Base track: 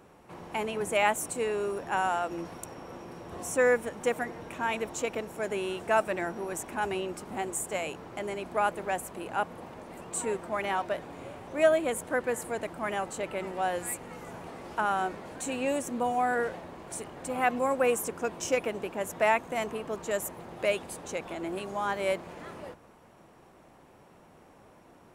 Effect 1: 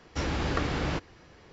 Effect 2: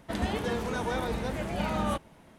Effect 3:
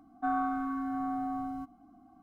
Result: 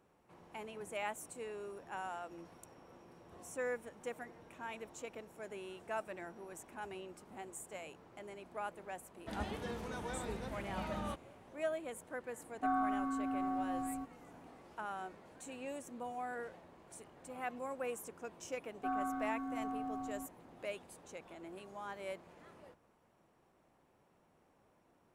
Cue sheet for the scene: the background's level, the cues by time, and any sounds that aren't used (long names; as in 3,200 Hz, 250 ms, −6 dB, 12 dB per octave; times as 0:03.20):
base track −15 dB
0:09.18: mix in 2 −11.5 dB
0:12.40: mix in 3 −3.5 dB
0:18.61: mix in 3 −7 dB
not used: 1